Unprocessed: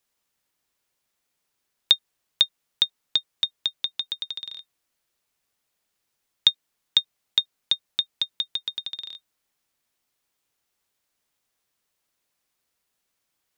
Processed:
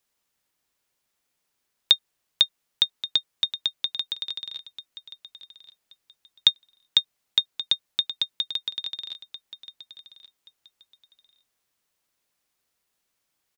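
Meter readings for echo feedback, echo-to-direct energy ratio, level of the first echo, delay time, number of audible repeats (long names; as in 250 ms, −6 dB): 23%, −15.0 dB, −15.0 dB, 1,128 ms, 2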